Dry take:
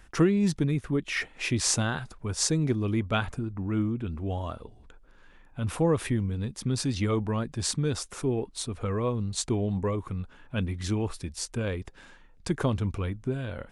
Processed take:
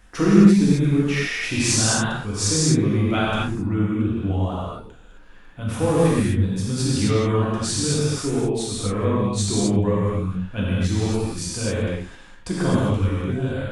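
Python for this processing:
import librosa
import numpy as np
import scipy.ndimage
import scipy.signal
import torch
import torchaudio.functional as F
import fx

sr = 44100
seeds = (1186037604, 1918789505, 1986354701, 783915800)

y = fx.rev_gated(x, sr, seeds[0], gate_ms=290, shape='flat', drr_db=-7.5)
y = y * 10.0 ** (-1.0 / 20.0)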